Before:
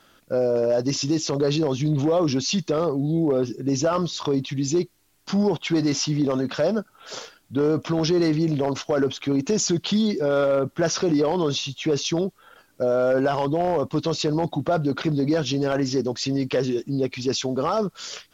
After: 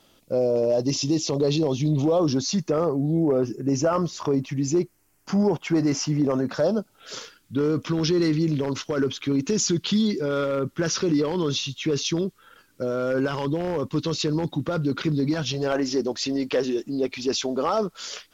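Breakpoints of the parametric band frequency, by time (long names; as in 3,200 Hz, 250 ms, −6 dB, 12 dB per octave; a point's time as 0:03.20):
parametric band −13 dB 0.61 octaves
0:01.98 1,500 Hz
0:02.68 3,700 Hz
0:06.45 3,700 Hz
0:07.18 700 Hz
0:15.22 700 Hz
0:15.79 130 Hz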